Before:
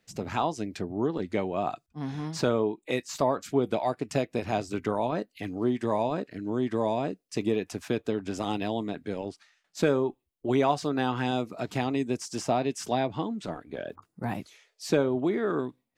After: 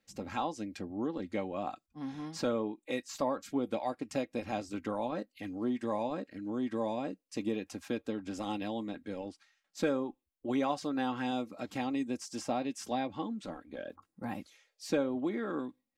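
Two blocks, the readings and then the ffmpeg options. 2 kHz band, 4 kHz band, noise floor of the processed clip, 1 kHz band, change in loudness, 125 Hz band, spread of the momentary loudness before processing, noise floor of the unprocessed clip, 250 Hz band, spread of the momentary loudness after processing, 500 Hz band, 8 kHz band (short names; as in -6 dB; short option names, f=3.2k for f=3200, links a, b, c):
-6.5 dB, -6.5 dB, -84 dBFS, -6.5 dB, -6.5 dB, -12.0 dB, 10 LU, -77 dBFS, -4.5 dB, 9 LU, -8.0 dB, -6.5 dB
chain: -af "aecho=1:1:3.7:0.56,volume=-7.5dB"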